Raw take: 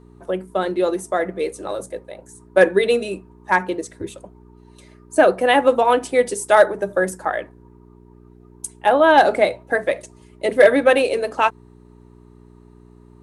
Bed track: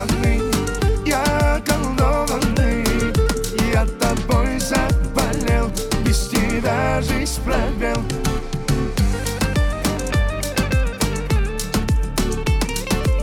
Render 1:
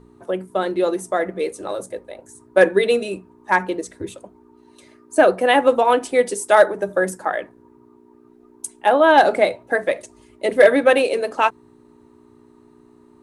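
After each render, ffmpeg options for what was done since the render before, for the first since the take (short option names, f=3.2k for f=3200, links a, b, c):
-af "bandreject=f=60:t=h:w=4,bandreject=f=120:t=h:w=4,bandreject=f=180:t=h:w=4"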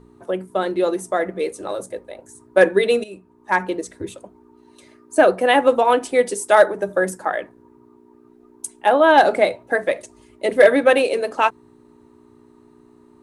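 -filter_complex "[0:a]asplit=2[a][b];[a]atrim=end=3.04,asetpts=PTS-STARTPTS,afade=t=out:st=3.036:d=0.004:c=hsin:silence=0.237137[c];[b]atrim=start=3.04,asetpts=PTS-STARTPTS,afade=t=in:d=0.64:silence=0.237137[d];[c][d]concat=n=2:v=0:a=1"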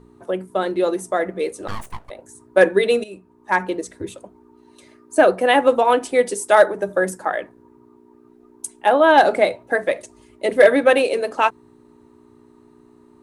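-filter_complex "[0:a]asplit=3[a][b][c];[a]afade=t=out:st=1.67:d=0.02[d];[b]aeval=exprs='abs(val(0))':c=same,afade=t=in:st=1.67:d=0.02,afade=t=out:st=2.09:d=0.02[e];[c]afade=t=in:st=2.09:d=0.02[f];[d][e][f]amix=inputs=3:normalize=0"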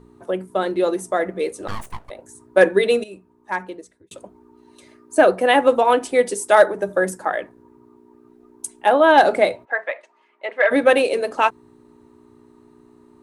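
-filter_complex "[0:a]asplit=3[a][b][c];[a]afade=t=out:st=9.64:d=0.02[d];[b]asuperpass=centerf=1400:order=4:qfactor=0.74,afade=t=in:st=9.64:d=0.02,afade=t=out:st=10.7:d=0.02[e];[c]afade=t=in:st=10.7:d=0.02[f];[d][e][f]amix=inputs=3:normalize=0,asplit=2[g][h];[g]atrim=end=4.11,asetpts=PTS-STARTPTS,afade=t=out:st=2.94:d=1.17[i];[h]atrim=start=4.11,asetpts=PTS-STARTPTS,afade=t=in:d=0.004:c=hsin[j];[i][j]concat=n=2:v=0:a=1"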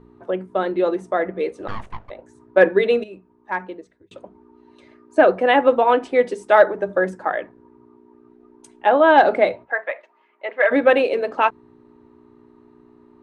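-af "lowpass=3k,bandreject=f=50:t=h:w=6,bandreject=f=100:t=h:w=6,bandreject=f=150:t=h:w=6,bandreject=f=200:t=h:w=6"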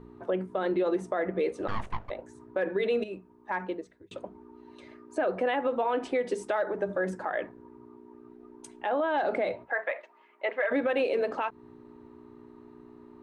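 -af "acompressor=threshold=-20dB:ratio=3,alimiter=limit=-19.5dB:level=0:latency=1:release=64"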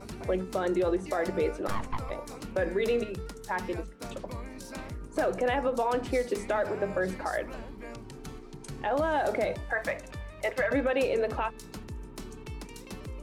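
-filter_complex "[1:a]volume=-22.5dB[a];[0:a][a]amix=inputs=2:normalize=0"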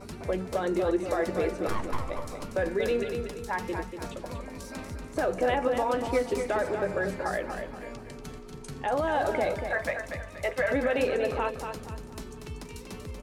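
-filter_complex "[0:a]asplit=2[a][b];[b]adelay=12,volume=-11dB[c];[a][c]amix=inputs=2:normalize=0,aecho=1:1:238|476|714|952:0.447|0.165|0.0612|0.0226"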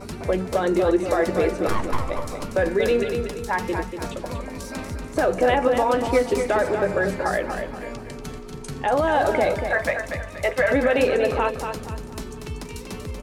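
-af "volume=7dB"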